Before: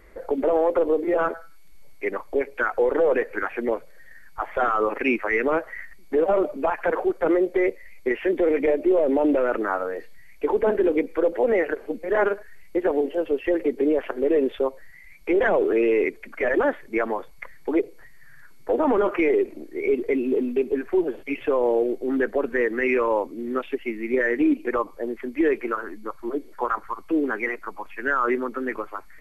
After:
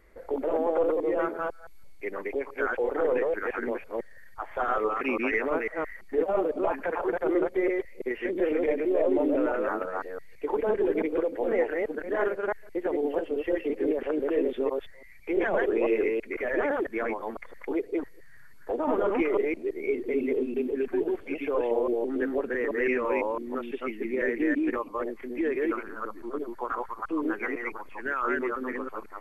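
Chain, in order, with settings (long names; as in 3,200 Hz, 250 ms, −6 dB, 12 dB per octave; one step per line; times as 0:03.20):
delay that plays each chunk backwards 167 ms, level −0.5 dB
level −7.5 dB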